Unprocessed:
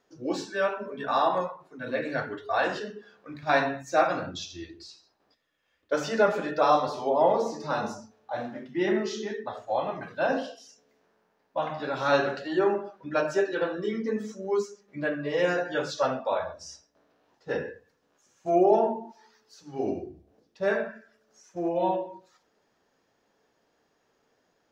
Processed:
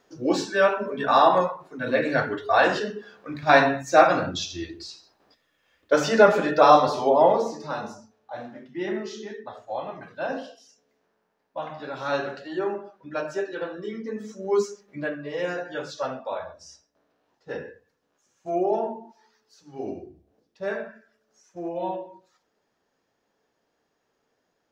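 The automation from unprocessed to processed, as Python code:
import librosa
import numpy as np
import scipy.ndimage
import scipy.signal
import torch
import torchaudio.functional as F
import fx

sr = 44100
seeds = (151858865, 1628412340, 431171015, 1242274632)

y = fx.gain(x, sr, db=fx.line((7.03, 7.0), (7.86, -3.5), (14.15, -3.5), (14.7, 7.0), (15.21, -3.5)))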